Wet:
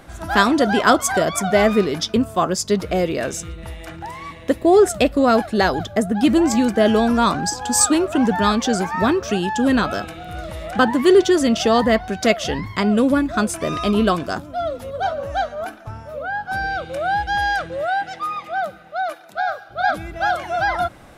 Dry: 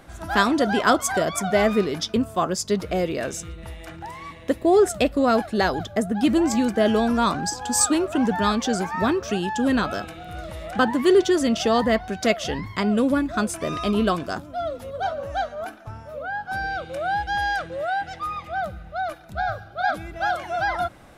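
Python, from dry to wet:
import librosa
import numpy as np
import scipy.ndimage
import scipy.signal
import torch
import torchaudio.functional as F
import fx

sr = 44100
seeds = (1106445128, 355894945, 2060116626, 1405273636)

y = fx.highpass(x, sr, hz=fx.line((17.87, 150.0), (19.69, 520.0)), slope=12, at=(17.87, 19.69), fade=0.02)
y = y * 10.0 ** (4.0 / 20.0)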